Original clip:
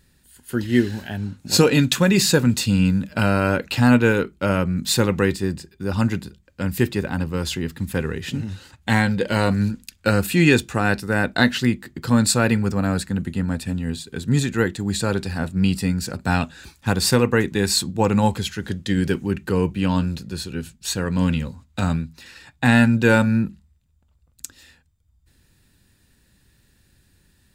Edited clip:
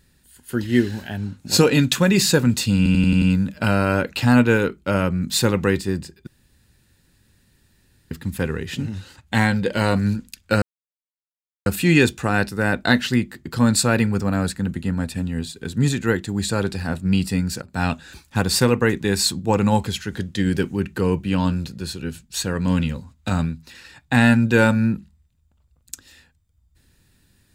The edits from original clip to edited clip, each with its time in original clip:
2.77 stutter 0.09 s, 6 plays
5.82–7.66 room tone
10.17 insert silence 1.04 s
16.13–16.4 fade in, from -19.5 dB

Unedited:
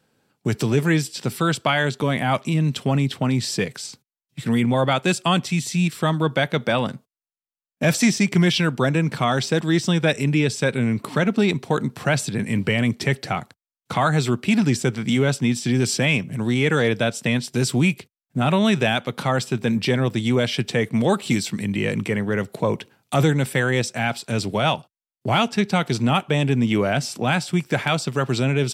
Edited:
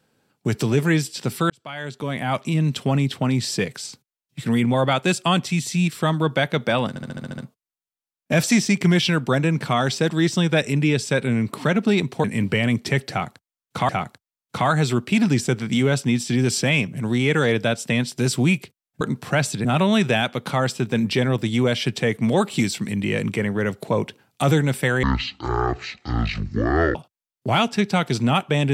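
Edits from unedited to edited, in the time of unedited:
1.5–2.59 fade in
6.89 stutter 0.07 s, 8 plays
11.75–12.39 move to 18.37
13.25–14.04 loop, 2 plays
23.75–24.75 speed 52%

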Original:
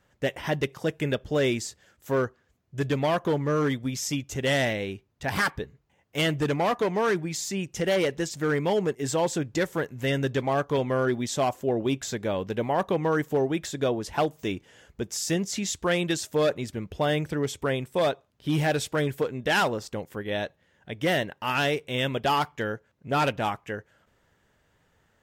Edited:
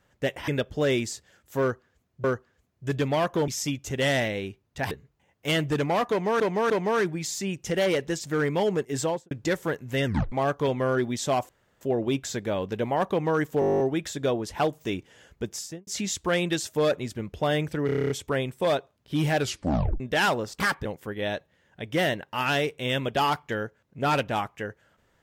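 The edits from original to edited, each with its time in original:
0.48–1.02 cut
2.15–2.78 loop, 2 plays
3.39–3.93 cut
5.36–5.61 move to 19.94
6.8–7.1 loop, 3 plays
9.11–9.41 studio fade out
10.15 tape stop 0.27 s
11.59 insert room tone 0.32 s
13.38 stutter 0.02 s, 11 plays
15.08–15.45 studio fade out
17.44 stutter 0.03 s, 9 plays
18.74 tape stop 0.60 s

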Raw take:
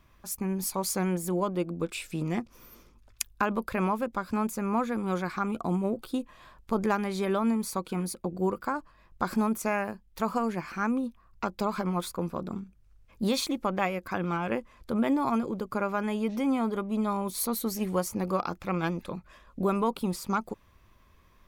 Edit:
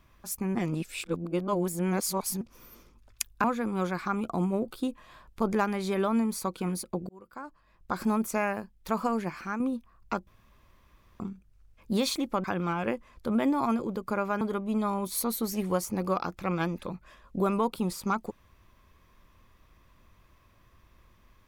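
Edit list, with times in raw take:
0.55–2.41 reverse
3.44–4.75 cut
8.4–9.48 fade in
10.5–10.91 fade out equal-power, to -7 dB
11.58–12.51 room tone
13.75–14.08 cut
16.05–16.64 cut

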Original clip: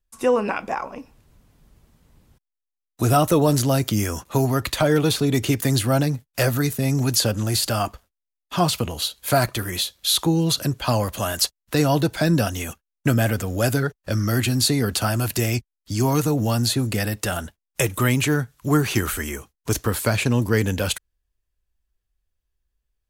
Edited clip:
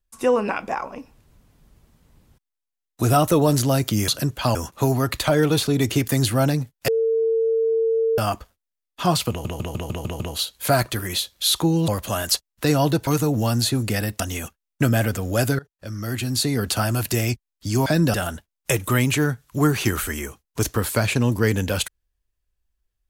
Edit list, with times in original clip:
6.41–7.71 bleep 451 Hz -17 dBFS
8.83 stutter 0.15 s, 7 plays
10.51–10.98 move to 4.08
12.17–12.45 swap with 16.11–17.24
13.84–15 fade in, from -22 dB

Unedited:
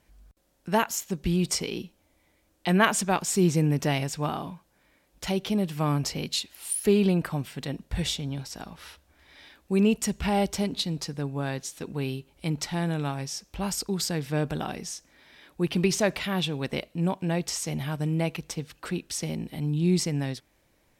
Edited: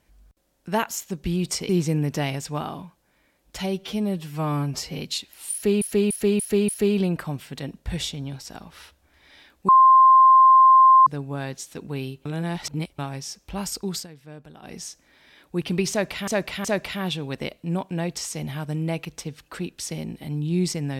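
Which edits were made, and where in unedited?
1.69–3.37 cut
5.27–6.2 stretch 1.5×
6.74–7.03 loop, 5 plays
9.74–11.12 bleep 1050 Hz -9.5 dBFS
12.31–13.04 reverse
14–14.8 dip -15.5 dB, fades 0.13 s
15.96–16.33 loop, 3 plays

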